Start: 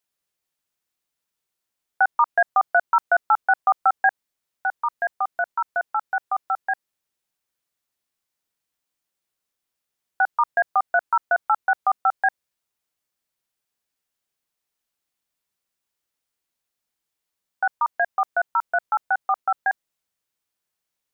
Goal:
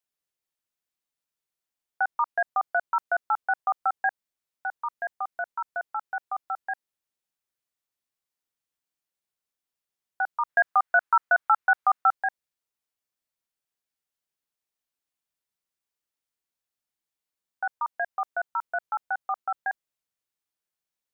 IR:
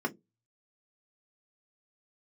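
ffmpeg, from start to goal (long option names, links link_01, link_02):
-filter_complex "[0:a]asettb=1/sr,asplit=3[link_01][link_02][link_03];[link_01]atrim=end=10.494[link_04];[link_02]atrim=start=10.49:end=12.14,asetpts=PTS-STARTPTS,afade=type=in:duration=0.004:curve=qsin,afade=type=out:start_time=1.646:duration=0.004:curve=qsin,equalizer=frequency=1500:width_type=o:width=1.7:gain=8.5[link_05];[link_03]atrim=start=12.136[link_06];[link_04][link_05]acrossfade=duration=0.004:curve1=hsin:curve2=qsin[link_07];[link_07][link_06]acrossfade=duration=0.004:curve1=qsin:curve2=hsin,volume=-7dB"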